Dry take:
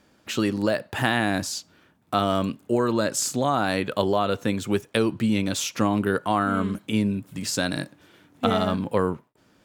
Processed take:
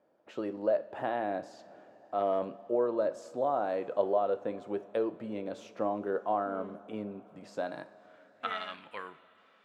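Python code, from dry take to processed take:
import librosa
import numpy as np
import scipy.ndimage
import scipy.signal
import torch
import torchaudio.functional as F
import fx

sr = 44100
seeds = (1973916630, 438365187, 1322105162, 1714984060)

y = fx.transient(x, sr, attack_db=-4, sustain_db=9, at=(1.57, 2.48), fade=0.02)
y = fx.filter_sweep_bandpass(y, sr, from_hz=590.0, to_hz=2300.0, start_s=7.51, end_s=8.67, q=2.4)
y = fx.rev_double_slope(y, sr, seeds[0], early_s=0.35, late_s=4.9, knee_db=-18, drr_db=10.5)
y = y * 10.0 ** (-2.0 / 20.0)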